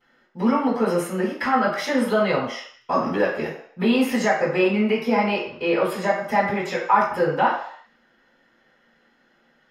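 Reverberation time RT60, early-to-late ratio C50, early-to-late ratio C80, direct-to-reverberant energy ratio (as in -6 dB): 0.60 s, 3.5 dB, 7.5 dB, -14.5 dB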